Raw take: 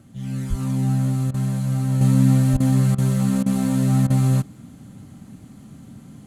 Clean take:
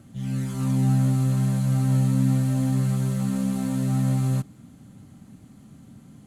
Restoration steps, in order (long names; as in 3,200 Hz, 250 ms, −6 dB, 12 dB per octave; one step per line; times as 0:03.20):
high-pass at the plosives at 0:00.49/0:02.52
repair the gap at 0:01.31/0:02.57/0:02.95/0:03.43/0:04.07, 30 ms
level 0 dB, from 0:02.01 −5.5 dB